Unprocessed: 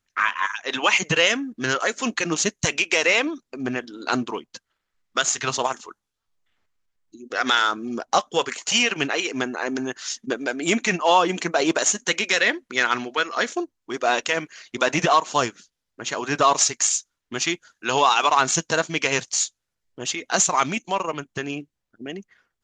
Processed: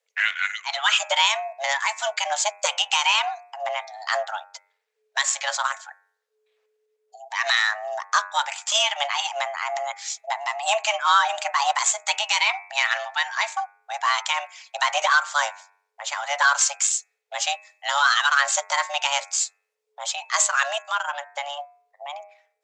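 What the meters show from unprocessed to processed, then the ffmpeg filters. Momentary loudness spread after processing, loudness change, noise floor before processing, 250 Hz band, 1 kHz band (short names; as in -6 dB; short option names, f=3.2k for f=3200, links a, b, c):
12 LU, -0.5 dB, -81 dBFS, under -40 dB, 0.0 dB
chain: -af "bandreject=f=94.91:t=h:w=4,bandreject=f=189.82:t=h:w=4,bandreject=f=284.73:t=h:w=4,bandreject=f=379.64:t=h:w=4,bandreject=f=474.55:t=h:w=4,bandreject=f=569.46:t=h:w=4,bandreject=f=664.37:t=h:w=4,bandreject=f=759.28:t=h:w=4,bandreject=f=854.19:t=h:w=4,bandreject=f=949.1:t=h:w=4,bandreject=f=1.04401k:t=h:w=4,bandreject=f=1.13892k:t=h:w=4,bandreject=f=1.23383k:t=h:w=4,bandreject=f=1.32874k:t=h:w=4,bandreject=f=1.42365k:t=h:w=4,bandreject=f=1.51856k:t=h:w=4,bandreject=f=1.61347k:t=h:w=4,bandreject=f=1.70838k:t=h:w=4,bandreject=f=1.80329k:t=h:w=4,bandreject=f=1.8982k:t=h:w=4,bandreject=f=1.99311k:t=h:w=4,bandreject=f=2.08802k:t=h:w=4,bandreject=f=2.18293k:t=h:w=4,afreqshift=430,volume=-1dB"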